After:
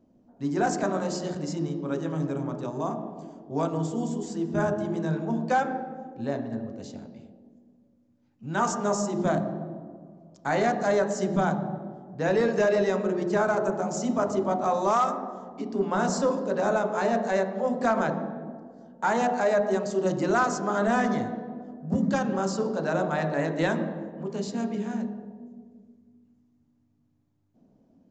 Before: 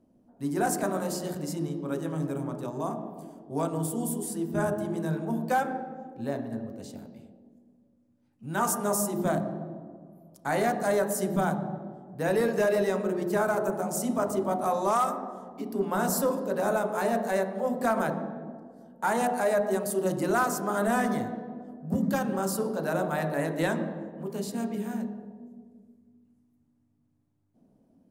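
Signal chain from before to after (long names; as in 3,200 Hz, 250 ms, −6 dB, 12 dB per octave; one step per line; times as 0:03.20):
downsampling to 16,000 Hz
level +2 dB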